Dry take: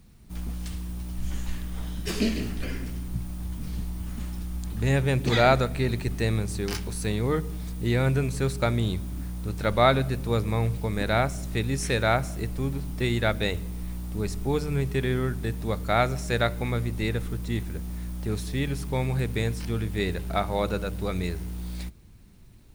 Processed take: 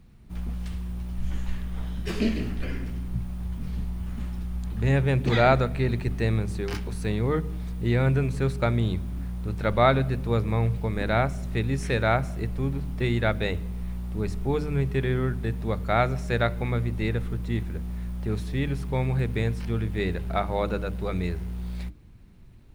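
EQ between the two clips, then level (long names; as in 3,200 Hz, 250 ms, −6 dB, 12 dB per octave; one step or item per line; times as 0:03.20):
bass and treble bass +2 dB, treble −10 dB
mains-hum notches 50/100/150/200/250/300 Hz
0.0 dB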